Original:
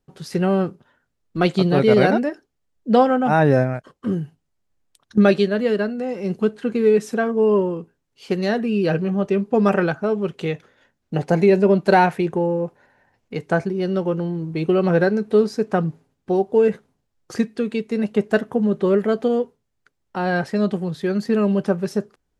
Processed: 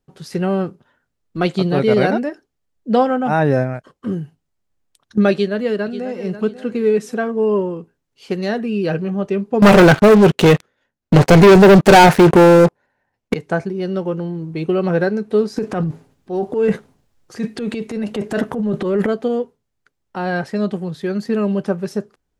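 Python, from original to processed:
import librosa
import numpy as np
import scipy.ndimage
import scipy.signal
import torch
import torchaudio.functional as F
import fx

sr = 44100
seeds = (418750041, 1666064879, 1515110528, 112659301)

y = fx.echo_throw(x, sr, start_s=5.32, length_s=0.84, ms=540, feedback_pct=30, wet_db=-13.0)
y = fx.leveller(y, sr, passes=5, at=(9.62, 13.34))
y = fx.transient(y, sr, attack_db=-7, sustain_db=11, at=(15.56, 19.07))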